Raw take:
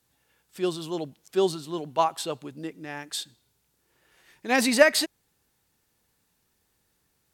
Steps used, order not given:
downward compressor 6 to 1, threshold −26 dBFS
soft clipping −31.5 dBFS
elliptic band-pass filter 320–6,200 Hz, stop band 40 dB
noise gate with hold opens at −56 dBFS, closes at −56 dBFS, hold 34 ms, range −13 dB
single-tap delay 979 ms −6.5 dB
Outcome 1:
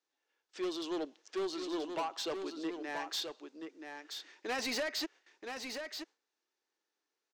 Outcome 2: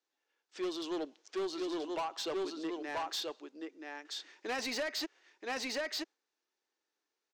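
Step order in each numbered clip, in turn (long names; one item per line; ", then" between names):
elliptic band-pass filter, then downward compressor, then soft clipping, then single-tap delay, then noise gate with hold
noise gate with hold, then single-tap delay, then downward compressor, then elliptic band-pass filter, then soft clipping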